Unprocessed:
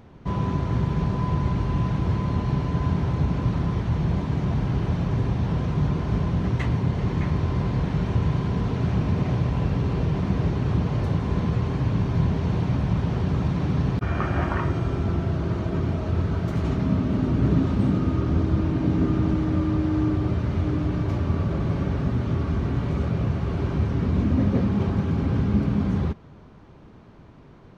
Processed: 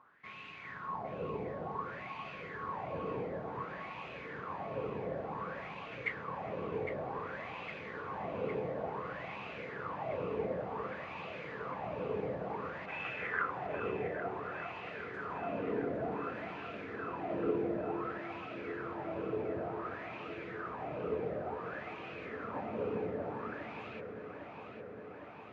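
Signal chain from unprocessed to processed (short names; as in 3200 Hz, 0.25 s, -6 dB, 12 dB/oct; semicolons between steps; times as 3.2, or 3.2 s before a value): wah 0.51 Hz 420–2400 Hz, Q 7.4; echo with dull and thin repeats by turns 0.44 s, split 1300 Hz, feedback 86%, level -7 dB; speed mistake 44.1 kHz file played as 48 kHz; gain +4 dB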